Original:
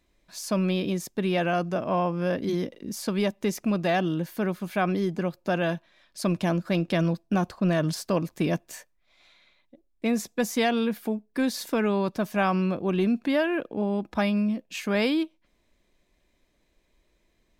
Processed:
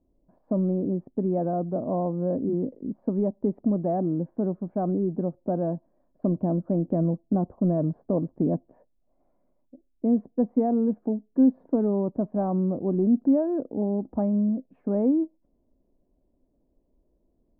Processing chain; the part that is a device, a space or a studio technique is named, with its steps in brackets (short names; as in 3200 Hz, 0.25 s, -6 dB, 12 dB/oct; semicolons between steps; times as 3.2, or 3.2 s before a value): under water (LPF 720 Hz 24 dB/oct; bell 260 Hz +8 dB 0.27 oct)